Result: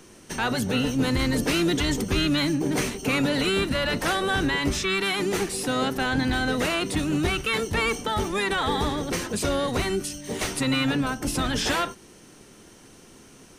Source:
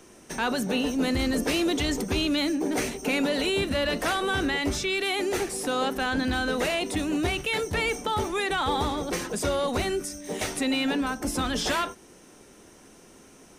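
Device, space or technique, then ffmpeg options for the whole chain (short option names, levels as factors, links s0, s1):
octave pedal: -filter_complex "[0:a]equalizer=f=700:w=1.4:g=-4,asplit=2[s0][s1];[s1]asetrate=22050,aresample=44100,atempo=2,volume=0.447[s2];[s0][s2]amix=inputs=2:normalize=0,volume=1.26"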